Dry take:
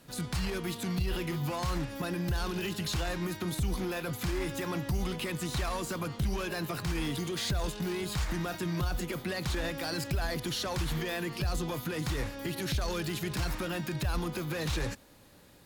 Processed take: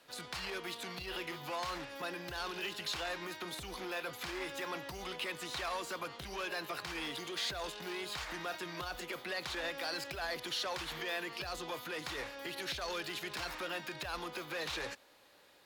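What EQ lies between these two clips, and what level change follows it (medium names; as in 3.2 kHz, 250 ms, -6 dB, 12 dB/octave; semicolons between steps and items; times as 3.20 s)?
three-band isolator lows -19 dB, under 380 Hz, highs -14 dB, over 4.5 kHz; treble shelf 3.8 kHz +8 dB; -2.5 dB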